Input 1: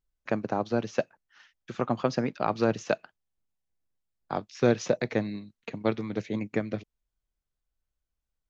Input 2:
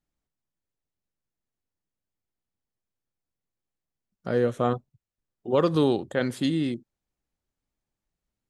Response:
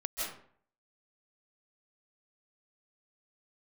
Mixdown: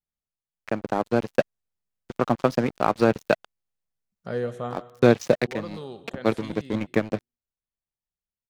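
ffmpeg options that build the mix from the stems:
-filter_complex "[0:a]aeval=exprs='sgn(val(0))*max(abs(val(0))-0.0126,0)':channel_layout=same,adelay=400,volume=-1.5dB[link_01];[1:a]equalizer=frequency=300:width_type=o:width=0.24:gain=-15,volume=-12.5dB,afade=type=out:start_time=4.33:duration=0.61:silence=0.298538,asplit=3[link_02][link_03][link_04];[link_03]volume=-15dB[link_05];[link_04]apad=whole_len=392151[link_06];[link_01][link_06]sidechaincompress=threshold=-51dB:ratio=8:attack=32:release=103[link_07];[2:a]atrim=start_sample=2205[link_08];[link_05][link_08]afir=irnorm=-1:irlink=0[link_09];[link_07][link_02][link_09]amix=inputs=3:normalize=0,dynaudnorm=framelen=240:gausssize=7:maxgain=9dB"

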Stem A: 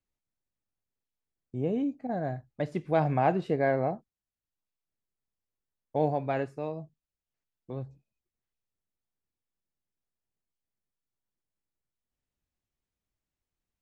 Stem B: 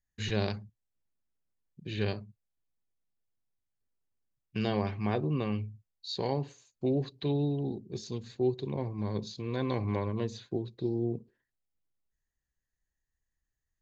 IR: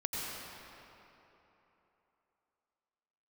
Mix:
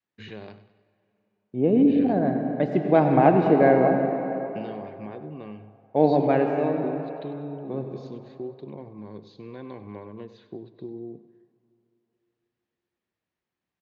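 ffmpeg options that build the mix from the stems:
-filter_complex "[0:a]volume=0.5dB,asplit=2[link_01][link_02];[link_02]volume=-3dB[link_03];[1:a]lowpass=frequency=2800:poles=1,acompressor=threshold=-33dB:ratio=5,volume=-1.5dB,asplit=3[link_04][link_05][link_06];[link_05]volume=-23.5dB[link_07];[link_06]volume=-14.5dB[link_08];[2:a]atrim=start_sample=2205[link_09];[link_03][link_07]amix=inputs=2:normalize=0[link_10];[link_10][link_09]afir=irnorm=-1:irlink=0[link_11];[link_08]aecho=0:1:97|194|291|388|485|582:1|0.44|0.194|0.0852|0.0375|0.0165[link_12];[link_01][link_04][link_11][link_12]amix=inputs=4:normalize=0,adynamicequalizer=threshold=0.0158:dfrequency=290:dqfactor=0.86:tfrequency=290:tqfactor=0.86:attack=5:release=100:ratio=0.375:range=3.5:mode=boostabove:tftype=bell,highpass=160,lowpass=3700"

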